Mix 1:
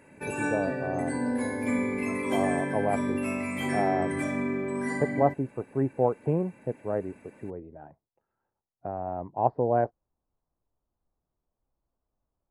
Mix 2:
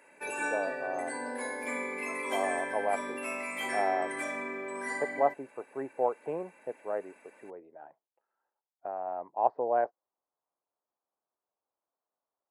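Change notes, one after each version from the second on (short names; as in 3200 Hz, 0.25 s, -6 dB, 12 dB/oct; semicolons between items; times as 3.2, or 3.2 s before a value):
master: add HPF 580 Hz 12 dB/oct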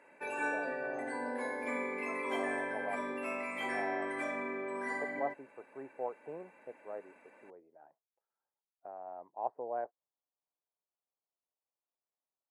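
speech -9.5 dB; master: add LPF 2000 Hz 6 dB/oct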